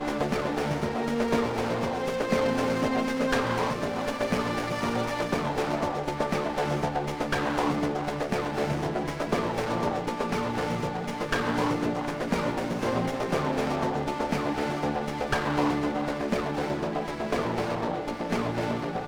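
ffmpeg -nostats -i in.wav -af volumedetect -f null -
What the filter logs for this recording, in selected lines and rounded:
mean_volume: -28.0 dB
max_volume: -12.0 dB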